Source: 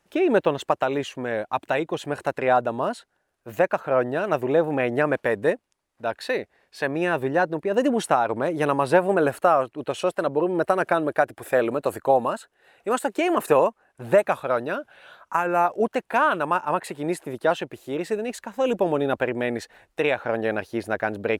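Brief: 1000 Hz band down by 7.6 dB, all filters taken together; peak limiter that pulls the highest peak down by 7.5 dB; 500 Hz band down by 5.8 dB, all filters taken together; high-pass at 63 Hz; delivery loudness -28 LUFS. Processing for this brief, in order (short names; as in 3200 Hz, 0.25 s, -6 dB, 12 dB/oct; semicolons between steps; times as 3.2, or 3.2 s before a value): HPF 63 Hz; bell 500 Hz -4.5 dB; bell 1000 Hz -9 dB; gain +2.5 dB; limiter -14.5 dBFS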